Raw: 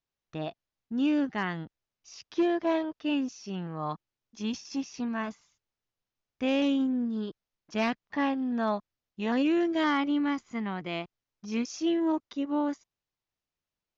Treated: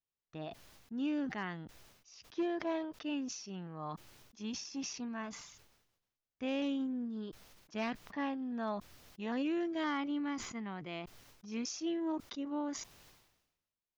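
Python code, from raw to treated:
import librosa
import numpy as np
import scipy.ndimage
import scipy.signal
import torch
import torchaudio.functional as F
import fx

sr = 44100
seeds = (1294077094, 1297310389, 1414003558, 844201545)

y = fx.sustainer(x, sr, db_per_s=58.0)
y = F.gain(torch.from_numpy(y), -9.0).numpy()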